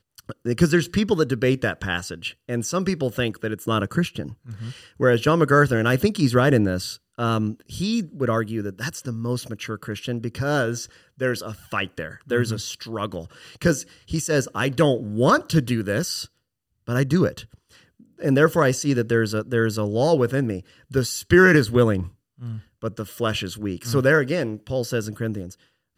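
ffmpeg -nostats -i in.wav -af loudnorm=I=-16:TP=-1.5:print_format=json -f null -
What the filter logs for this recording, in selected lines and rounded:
"input_i" : "-22.7",
"input_tp" : "-3.4",
"input_lra" : "6.6",
"input_thresh" : "-33.2",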